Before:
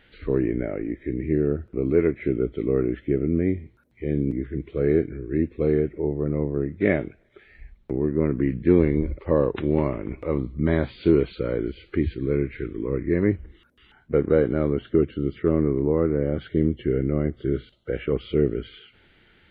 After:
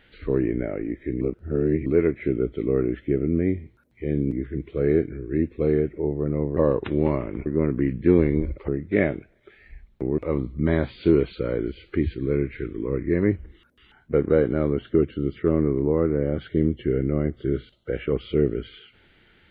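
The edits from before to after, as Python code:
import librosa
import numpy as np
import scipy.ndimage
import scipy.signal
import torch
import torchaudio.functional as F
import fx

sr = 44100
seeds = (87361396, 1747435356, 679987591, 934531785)

y = fx.edit(x, sr, fx.reverse_span(start_s=1.21, length_s=0.65),
    fx.swap(start_s=6.57, length_s=1.5, other_s=9.29, other_length_s=0.89), tone=tone)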